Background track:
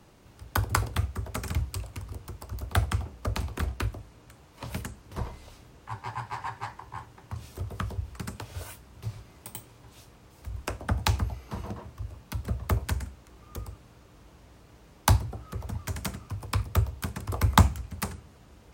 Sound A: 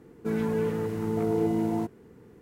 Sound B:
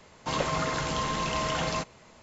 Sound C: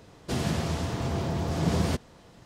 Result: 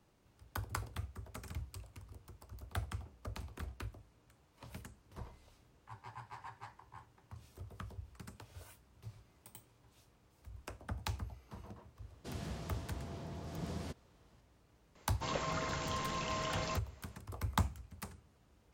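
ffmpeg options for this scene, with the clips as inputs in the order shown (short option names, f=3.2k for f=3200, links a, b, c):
-filter_complex "[0:a]volume=-14.5dB[a];[3:a]atrim=end=2.45,asetpts=PTS-STARTPTS,volume=-16.5dB,afade=t=in:d=0.004:c=hsin,afade=t=out:st=2.446:d=0.004:c=hsin,adelay=11960[b];[2:a]atrim=end=2.22,asetpts=PTS-STARTPTS,volume=-9dB,afade=t=in:d=0.004:c=hsin,afade=t=out:st=2.216:d=0.004:c=hsin,adelay=14950[c];[a][b][c]amix=inputs=3:normalize=0"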